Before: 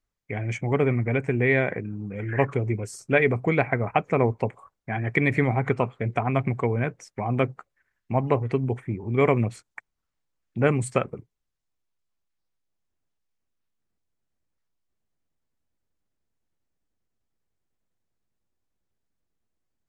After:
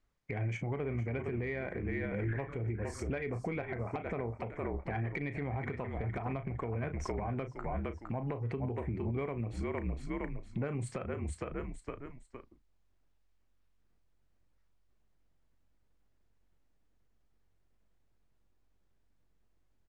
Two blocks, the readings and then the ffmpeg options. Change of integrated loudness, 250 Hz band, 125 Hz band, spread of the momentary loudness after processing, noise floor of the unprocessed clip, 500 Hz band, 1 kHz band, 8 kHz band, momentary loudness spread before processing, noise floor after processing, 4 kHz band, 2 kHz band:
-12.5 dB, -10.5 dB, -10.0 dB, 4 LU, -80 dBFS, -13.0 dB, -13.0 dB, -10.0 dB, 11 LU, -71 dBFS, -13.0 dB, -14.5 dB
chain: -filter_complex "[0:a]aemphasis=mode=reproduction:type=50kf,asplit=2[a][b];[b]adelay=35,volume=-12dB[c];[a][c]amix=inputs=2:normalize=0,asplit=2[d][e];[e]asplit=3[f][g][h];[f]adelay=461,afreqshift=-46,volume=-10.5dB[i];[g]adelay=922,afreqshift=-92,volume=-20.7dB[j];[h]adelay=1383,afreqshift=-138,volume=-30.8dB[k];[i][j][k]amix=inputs=3:normalize=0[l];[d][l]amix=inputs=2:normalize=0,acompressor=threshold=-31dB:ratio=12,asoftclip=type=tanh:threshold=-20.5dB,alimiter=level_in=8.5dB:limit=-24dB:level=0:latency=1:release=212,volume=-8.5dB,volume=5.5dB"

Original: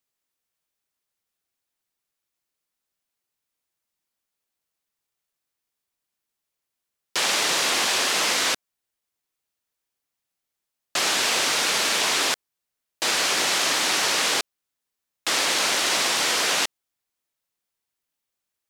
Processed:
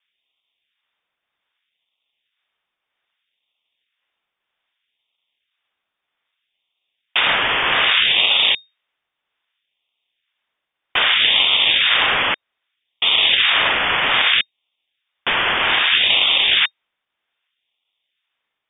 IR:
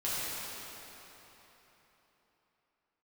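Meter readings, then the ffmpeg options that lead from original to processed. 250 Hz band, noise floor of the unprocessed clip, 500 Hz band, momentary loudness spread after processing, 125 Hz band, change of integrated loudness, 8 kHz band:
-0.5 dB, -84 dBFS, +1.0 dB, 8 LU, +7.0 dB, +6.5 dB, under -40 dB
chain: -af "acrusher=samples=12:mix=1:aa=0.000001:lfo=1:lforange=19.2:lforate=0.63,lowpass=f=3.1k:t=q:w=0.5098,lowpass=f=3.1k:t=q:w=0.6013,lowpass=f=3.1k:t=q:w=0.9,lowpass=f=3.1k:t=q:w=2.563,afreqshift=-3700,volume=7.5dB"

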